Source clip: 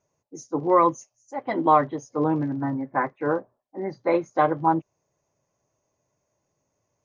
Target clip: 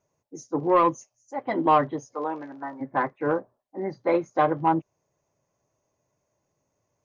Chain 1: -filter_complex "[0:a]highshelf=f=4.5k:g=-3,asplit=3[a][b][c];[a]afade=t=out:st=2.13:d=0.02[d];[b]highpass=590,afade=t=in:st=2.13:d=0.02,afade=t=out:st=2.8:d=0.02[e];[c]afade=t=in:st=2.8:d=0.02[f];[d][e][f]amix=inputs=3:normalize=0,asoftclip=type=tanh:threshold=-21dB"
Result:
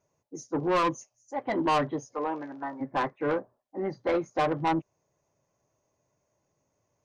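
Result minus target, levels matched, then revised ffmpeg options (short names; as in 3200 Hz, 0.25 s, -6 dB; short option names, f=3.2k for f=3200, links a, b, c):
soft clip: distortion +13 dB
-filter_complex "[0:a]highshelf=f=4.5k:g=-3,asplit=3[a][b][c];[a]afade=t=out:st=2.13:d=0.02[d];[b]highpass=590,afade=t=in:st=2.13:d=0.02,afade=t=out:st=2.8:d=0.02[e];[c]afade=t=in:st=2.8:d=0.02[f];[d][e][f]amix=inputs=3:normalize=0,asoftclip=type=tanh:threshold=-9.5dB"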